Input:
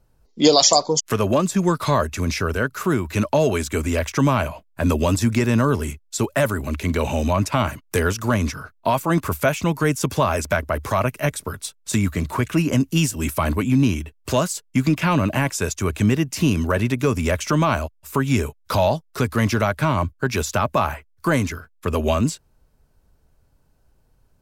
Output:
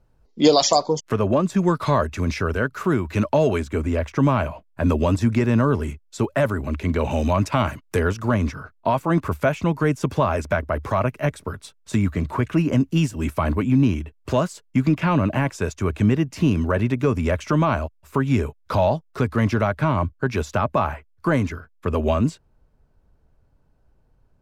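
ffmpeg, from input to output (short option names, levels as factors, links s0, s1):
-af "asetnsamples=n=441:p=0,asendcmd='0.95 lowpass f 1300;1.5 lowpass f 2500;3.6 lowpass f 1100;4.23 lowpass f 1800;7.11 lowpass f 3800;7.95 lowpass f 1700',lowpass=f=3000:p=1"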